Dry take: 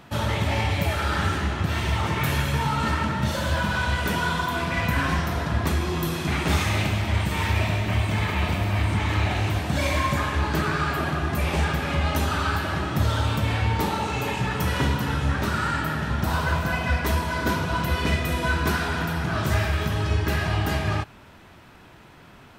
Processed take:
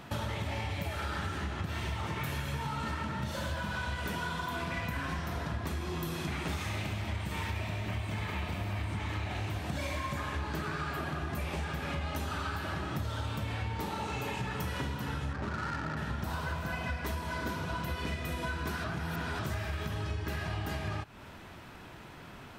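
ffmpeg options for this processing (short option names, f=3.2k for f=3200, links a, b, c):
-filter_complex "[0:a]asettb=1/sr,asplit=3[a][b][c];[a]atrim=end=15.334[d];[b]atrim=start=15.33:end=15.97,asetpts=PTS-STARTPTS,afade=t=in:d=0.004:c=qsin,afade=t=out:st=0.636:d=0.004:c=qsin,adynamicsmooth=sensitivity=2.5:basefreq=670[e];[c]atrim=start=15.966[f];[d][e]acrossfade=d=0.004:c1=hsin:c2=qsin[g];[g][f]acrossfade=d=0.004:c1=qsin:c2=hsin,asplit=3[h][i][j];[h]atrim=end=18.842[k];[i]atrim=start=18.838:end=19.392,asetpts=PTS-STARTPTS,areverse[l];[j]atrim=start=19.388[m];[k][l]acrossfade=d=0.004:c1=hsin:c2=hsin[n];[n][m]acrossfade=d=0.004:c1=hsin:c2=hsin,acompressor=threshold=-33dB:ratio=6"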